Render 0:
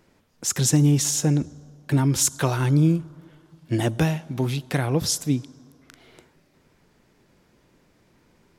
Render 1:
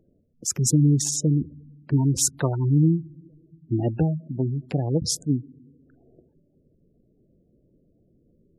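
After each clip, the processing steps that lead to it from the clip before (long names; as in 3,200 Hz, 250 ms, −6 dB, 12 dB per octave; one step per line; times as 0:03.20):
adaptive Wiener filter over 41 samples
gate on every frequency bin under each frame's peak −20 dB strong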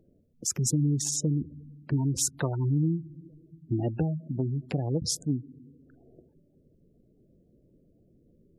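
downward compressor 2 to 1, threshold −28 dBFS, peak gain reduction 8 dB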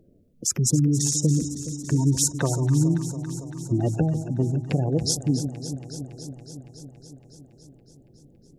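delay that swaps between a low-pass and a high-pass 140 ms, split 920 Hz, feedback 86%, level −10.5 dB
level +5 dB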